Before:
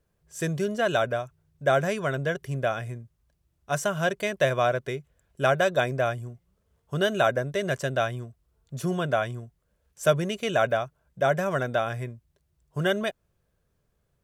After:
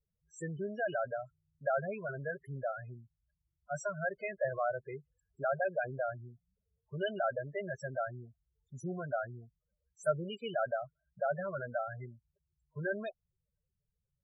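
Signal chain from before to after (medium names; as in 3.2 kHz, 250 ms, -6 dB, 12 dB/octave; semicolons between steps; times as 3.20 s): tilt shelf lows -3.5 dB, about 720 Hz; loudest bins only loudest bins 8; trim -8.5 dB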